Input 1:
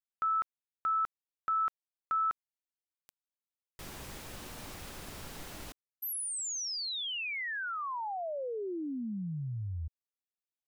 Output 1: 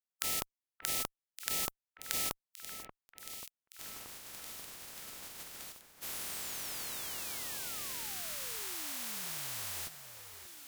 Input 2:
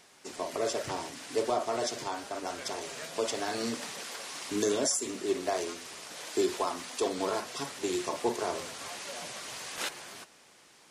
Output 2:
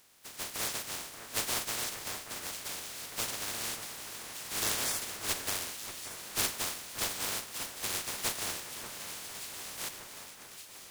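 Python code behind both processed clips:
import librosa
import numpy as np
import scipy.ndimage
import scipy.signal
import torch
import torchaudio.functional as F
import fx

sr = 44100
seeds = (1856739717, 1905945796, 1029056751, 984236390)

y = fx.spec_flatten(x, sr, power=0.11)
y = fx.cheby_harmonics(y, sr, harmonics=(4,), levels_db=(-12,), full_scale_db=-3.5)
y = fx.echo_alternate(y, sr, ms=583, hz=2200.0, feedback_pct=79, wet_db=-10)
y = y * librosa.db_to_amplitude(-3.5)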